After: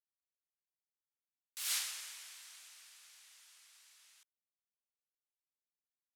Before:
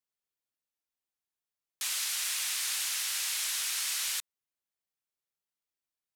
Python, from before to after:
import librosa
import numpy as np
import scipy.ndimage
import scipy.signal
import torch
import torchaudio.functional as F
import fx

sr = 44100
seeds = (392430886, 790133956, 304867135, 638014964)

y = fx.doppler_pass(x, sr, speed_mps=46, closest_m=2.6, pass_at_s=1.73)
y = y * librosa.db_to_amplitude(-1.0)